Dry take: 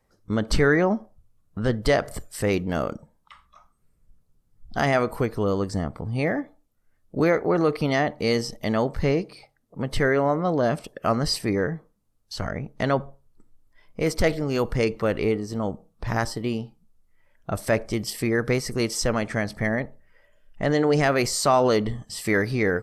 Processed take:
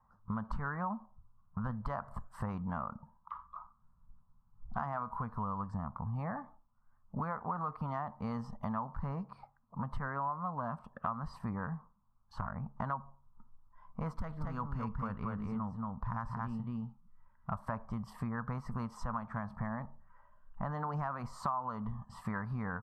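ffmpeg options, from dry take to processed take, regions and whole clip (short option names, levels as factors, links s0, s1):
-filter_complex "[0:a]asettb=1/sr,asplit=3[s0][s1][s2];[s0]atrim=end=14.144[s3];[s1]atrim=start=14.14:end=17.51,asetpts=PTS-STARTPTS,afade=t=in:d=0.004:c=qsin,afade=t=out:st=3.366:d=0.004:c=qsin,equalizer=f=790:t=o:w=1.3:g=-7,aecho=1:1:229:0.668,atrim=end_sample=148617[s4];[s2]atrim=start=17.506[s5];[s3][s4]acrossfade=d=0.004:c1=hsin:c2=qsin[s6];[s6][s5]acrossfade=d=0.004:c1=qsin:c2=hsin,firequalizer=gain_entry='entry(230,0);entry(330,-22);entry(1000,14);entry(2100,-18);entry(5500,-26)':delay=0.05:min_phase=1,acompressor=threshold=0.0224:ratio=5,volume=0.794"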